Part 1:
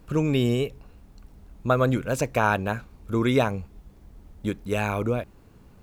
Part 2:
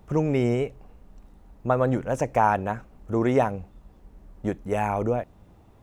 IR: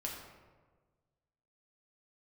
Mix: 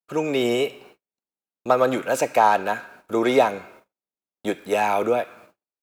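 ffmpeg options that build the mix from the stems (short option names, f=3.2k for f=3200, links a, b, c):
-filter_complex "[0:a]highpass=f=1.2k:w=0.5412,highpass=f=1.2k:w=1.3066,aeval=exprs='(tanh(15.8*val(0)+0.3)-tanh(0.3))/15.8':c=same,alimiter=level_in=2dB:limit=-24dB:level=0:latency=1:release=54,volume=-2dB,volume=0dB,asplit=2[a][b];[b]volume=-4dB[c];[1:a]highshelf=f=2k:g=-9,adelay=3.8,volume=2dB,asplit=2[d][e];[e]volume=-23dB[f];[2:a]atrim=start_sample=2205[g];[c][f]amix=inputs=2:normalize=0[h];[h][g]afir=irnorm=-1:irlink=0[i];[a][d][i]amix=inputs=3:normalize=0,highpass=340,agate=range=-46dB:threshold=-51dB:ratio=16:detection=peak,dynaudnorm=f=100:g=7:m=4dB"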